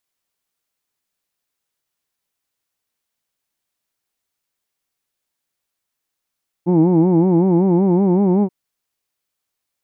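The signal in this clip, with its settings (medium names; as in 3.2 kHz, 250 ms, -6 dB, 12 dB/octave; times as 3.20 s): formant-synthesis vowel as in who'd, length 1.83 s, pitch 168 Hz, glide +2.5 st, vibrato depth 1.3 st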